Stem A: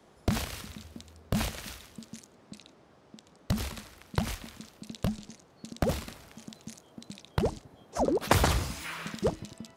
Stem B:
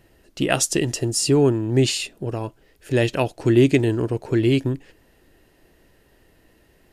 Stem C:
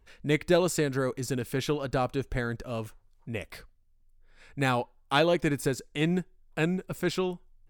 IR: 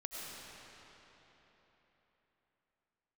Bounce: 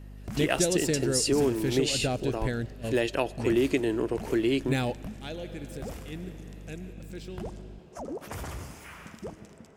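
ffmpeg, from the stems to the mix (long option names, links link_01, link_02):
-filter_complex "[0:a]equalizer=frequency=4000:width_type=o:width=0.53:gain=-10,alimiter=limit=-23dB:level=0:latency=1:release=11,volume=-9dB,asplit=2[link_01][link_02];[link_02]volume=-8dB[link_03];[1:a]highpass=250,volume=-3dB,asplit=3[link_04][link_05][link_06];[link_05]volume=-22.5dB[link_07];[2:a]equalizer=frequency=1100:width_type=o:width=0.84:gain=-14.5,adelay=100,volume=1.5dB,asplit=2[link_08][link_09];[link_09]volume=-20.5dB[link_10];[link_06]apad=whole_len=343627[link_11];[link_08][link_11]sidechaingate=range=-17dB:threshold=-56dB:ratio=16:detection=peak[link_12];[link_04][link_12]amix=inputs=2:normalize=0,aeval=exprs='val(0)+0.00708*(sin(2*PI*50*n/s)+sin(2*PI*2*50*n/s)/2+sin(2*PI*3*50*n/s)/3+sin(2*PI*4*50*n/s)/4+sin(2*PI*5*50*n/s)/5)':channel_layout=same,acompressor=threshold=-22dB:ratio=4,volume=0dB[link_13];[3:a]atrim=start_sample=2205[link_14];[link_03][link_07][link_10]amix=inputs=3:normalize=0[link_15];[link_15][link_14]afir=irnorm=-1:irlink=0[link_16];[link_01][link_13][link_16]amix=inputs=3:normalize=0"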